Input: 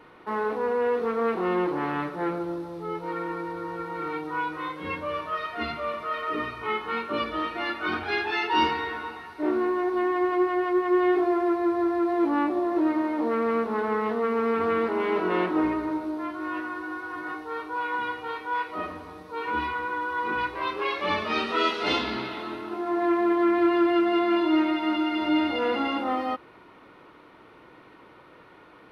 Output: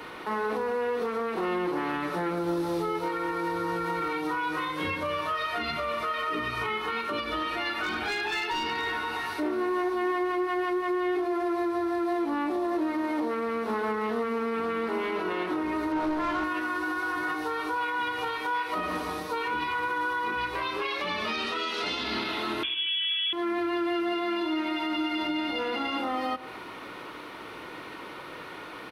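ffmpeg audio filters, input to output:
ffmpeg -i in.wav -filter_complex "[0:a]asettb=1/sr,asplit=3[link_01][link_02][link_03];[link_01]atrim=end=22.634[link_04];[link_02]atrim=start=22.63:end=23.33,asetpts=PTS-STARTPTS,afade=type=in:duration=0.004:curve=qsin,afade=type=out:start_time=0.696:duration=0.004:curve=qsin,lowpass=frequency=3100:width_type=q:width=0.5098,lowpass=frequency=3100:width_type=q:width=0.6013,lowpass=frequency=3100:width_type=q:width=0.9,lowpass=frequency=3100:width_type=q:width=2.563,afreqshift=-3700[link_05];[link_03]atrim=start=23.326[link_06];[link_04][link_05]acrossfade=duration=0.004:curve1=hsin:curve2=qsin[link_07];[link_07][link_06]acrossfade=duration=0.004:curve1=qsin:curve2=hsin,highshelf=frequency=2500:gain=10.5,acompressor=threshold=-29dB:ratio=6,asplit=2[link_08][link_09];[link_09]adelay=114,lowpass=frequency=1800:poles=1,volume=-18.5dB,asplit=2[link_10][link_11];[link_11]adelay=114,lowpass=frequency=1800:poles=1,volume=0.41,asplit=2[link_12][link_13];[link_13]adelay=114,lowpass=frequency=1800:poles=1,volume=0.41[link_14];[link_10][link_12][link_14]amix=inputs=3:normalize=0[link_15];[link_08][link_15]amix=inputs=2:normalize=0,asettb=1/sr,asplit=3[link_16][link_17][link_18];[link_16]atrim=end=7.834[link_19];[link_17]atrim=start=7.83:end=8.93,asetpts=PTS-STARTPTS,afade=type=in:duration=0.004:curve=qsin,afade=type=out:start_time=1.096:duration=0.004:curve=qsin,asoftclip=type=hard:threshold=-27dB[link_20];[link_18]atrim=start=8.926[link_21];[link_19][link_20]acrossfade=duration=0.004:curve1=hsin:curve2=qsin[link_22];[link_22][link_21]acrossfade=duration=0.004:curve1=qsin:curve2=hsin,asettb=1/sr,asplit=3[link_23][link_24][link_25];[link_23]atrim=end=15.924[link_26];[link_24]atrim=start=15.92:end=16.44,asetpts=PTS-STARTPTS,afade=type=in:duration=0.004:curve=qsin,afade=type=out:start_time=0.516:duration=0.004:curve=qsin,asplit=2[link_27][link_28];[link_28]highpass=frequency=720:poles=1,volume=19dB,asoftclip=type=tanh:threshold=-23.5dB[link_29];[link_27][link_29]amix=inputs=2:normalize=0,lowpass=frequency=1400:poles=1,volume=-6dB[link_30];[link_25]atrim=start=16.436[link_31];[link_26][link_30]acrossfade=duration=0.004:curve1=hsin:curve2=qsin[link_32];[link_32][link_31]acrossfade=duration=0.004:curve1=qsin:curve2=hsin,acrossover=split=180[link_33][link_34];[link_33]flanger=delay=16.5:depth=3.7:speed=0.48[link_35];[link_34]alimiter=level_in=6.5dB:limit=-24dB:level=0:latency=1:release=166,volume=-6.5dB[link_36];[link_35][link_36]amix=inputs=2:normalize=0,volume=8.5dB" out.wav

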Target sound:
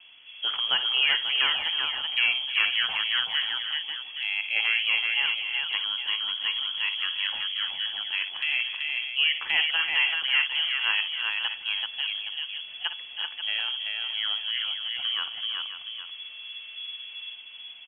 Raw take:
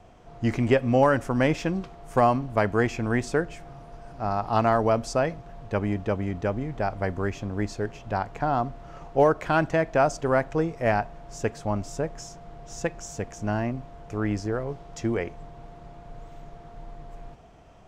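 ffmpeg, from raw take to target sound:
ffmpeg -i in.wav -filter_complex "[0:a]aecho=1:1:57|322|382|538|818:0.237|0.178|0.596|0.251|0.2,lowpass=frequency=2900:width_type=q:width=0.5098,lowpass=frequency=2900:width_type=q:width=0.6013,lowpass=frequency=2900:width_type=q:width=0.9,lowpass=frequency=2900:width_type=q:width=2.563,afreqshift=-3400,acrossover=split=2500[link_01][link_02];[link_02]acompressor=threshold=-30dB:ratio=4:attack=1:release=60[link_03];[link_01][link_03]amix=inputs=2:normalize=0" out.wav

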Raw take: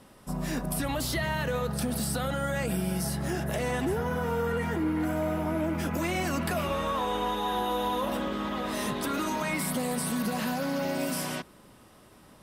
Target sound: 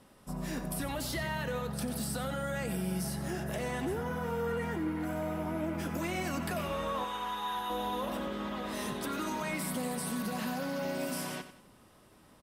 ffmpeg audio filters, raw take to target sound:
ffmpeg -i in.wav -filter_complex "[0:a]asettb=1/sr,asplit=3[link_01][link_02][link_03];[link_01]atrim=end=7.044[link_04];[link_02]atrim=start=7.04:end=7.7,asetpts=PTS-STARTPTS,afade=type=in:duration=0.004:curve=qsin,afade=type=out:start_time=0.656:duration=0.004:curve=qsin,lowshelf=frequency=790:width_type=q:width=1.5:gain=-7.5[link_05];[link_03]atrim=start=7.696[link_06];[link_04][link_05]acrossfade=duration=0.004:curve1=hsin:curve2=qsin[link_07];[link_07][link_06]acrossfade=duration=0.004:curve1=qsin:curve2=hsin,aecho=1:1:92|184|276|368:0.251|0.098|0.0382|0.0149,volume=-5.5dB" out.wav

